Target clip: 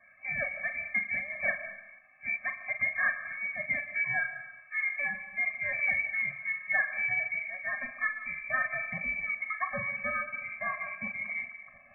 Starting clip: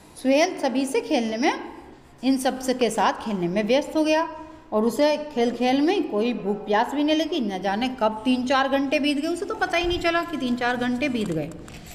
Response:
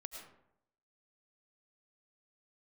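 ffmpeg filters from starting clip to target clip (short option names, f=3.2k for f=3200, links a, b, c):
-filter_complex "[0:a]asplit=2[a][b];[b]asetrate=55563,aresample=44100,atempo=0.793701,volume=-13dB[c];[a][c]amix=inputs=2:normalize=0,equalizer=f=240:w=2.7:g=-10,lowpass=f=2.2k:t=q:w=0.5098,lowpass=f=2.2k:t=q:w=0.6013,lowpass=f=2.2k:t=q:w=0.9,lowpass=f=2.2k:t=q:w=2.563,afreqshift=-2600,asplit=2[d][e];[1:a]atrim=start_sample=2205,adelay=42[f];[e][f]afir=irnorm=-1:irlink=0,volume=-4dB[g];[d][g]amix=inputs=2:normalize=0,afftfilt=real='re*eq(mod(floor(b*sr/1024/260),2),0)':imag='im*eq(mod(floor(b*sr/1024/260),2),0)':win_size=1024:overlap=0.75,volume=-6dB"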